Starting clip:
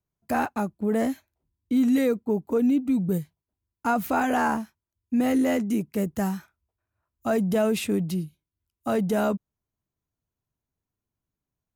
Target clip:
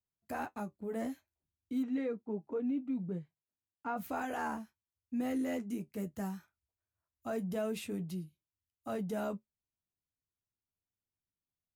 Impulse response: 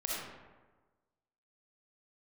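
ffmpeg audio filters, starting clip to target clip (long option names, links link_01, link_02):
-filter_complex "[0:a]flanger=delay=9.9:depth=2.3:regen=-50:speed=0.46:shape=triangular,asplit=3[link_01][link_02][link_03];[link_01]afade=type=out:start_time=1.82:duration=0.02[link_04];[link_02]highpass=130,lowpass=2700,afade=type=in:start_time=1.82:duration=0.02,afade=type=out:start_time=3.96:duration=0.02[link_05];[link_03]afade=type=in:start_time=3.96:duration=0.02[link_06];[link_04][link_05][link_06]amix=inputs=3:normalize=0,volume=-9dB"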